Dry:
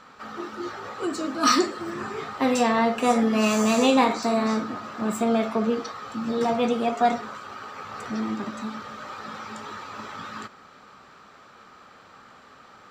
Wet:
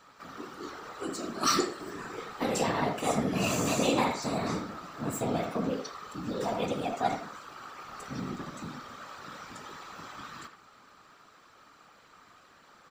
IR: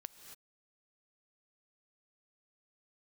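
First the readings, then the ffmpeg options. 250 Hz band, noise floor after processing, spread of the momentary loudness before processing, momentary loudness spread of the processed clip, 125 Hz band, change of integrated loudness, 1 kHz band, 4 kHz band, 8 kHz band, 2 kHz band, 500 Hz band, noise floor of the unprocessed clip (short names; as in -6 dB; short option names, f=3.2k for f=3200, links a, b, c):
-9.0 dB, -58 dBFS, 16 LU, 17 LU, +1.5 dB, -7.5 dB, -7.5 dB, -5.0 dB, -2.5 dB, -6.5 dB, -7.5 dB, -51 dBFS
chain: -filter_complex "[0:a]afftfilt=real='hypot(re,im)*cos(2*PI*random(0))':imag='hypot(re,im)*sin(2*PI*random(1))':win_size=512:overlap=0.75,crystalizer=i=1.5:c=0,asplit=2[a][b];[b]adelay=80,highpass=300,lowpass=3.4k,asoftclip=type=hard:threshold=-18.5dB,volume=-8dB[c];[a][c]amix=inputs=2:normalize=0,volume=-2.5dB"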